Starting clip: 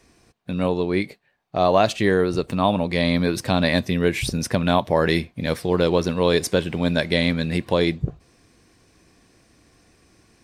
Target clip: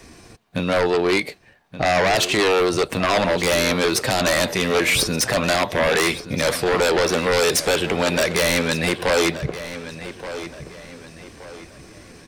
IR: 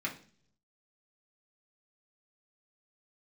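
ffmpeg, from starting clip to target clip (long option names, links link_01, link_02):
-filter_complex "[0:a]acrossover=split=400|4400[link_01][link_02][link_03];[link_01]acompressor=threshold=-36dB:ratio=8[link_04];[link_02]alimiter=limit=-14.5dB:level=0:latency=1:release=25[link_05];[link_04][link_05][link_03]amix=inputs=3:normalize=0,atempo=0.85,aeval=exprs='0.282*sin(PI/2*3.55*val(0)/0.282)':channel_layout=same,asplit=2[link_06][link_07];[link_07]adelay=1175,lowpass=frequency=4800:poles=1,volume=-12.5dB,asplit=2[link_08][link_09];[link_09]adelay=1175,lowpass=frequency=4800:poles=1,volume=0.38,asplit=2[link_10][link_11];[link_11]adelay=1175,lowpass=frequency=4800:poles=1,volume=0.38,asplit=2[link_12][link_13];[link_13]adelay=1175,lowpass=frequency=4800:poles=1,volume=0.38[link_14];[link_06][link_08][link_10][link_12][link_14]amix=inputs=5:normalize=0,volume=-3dB"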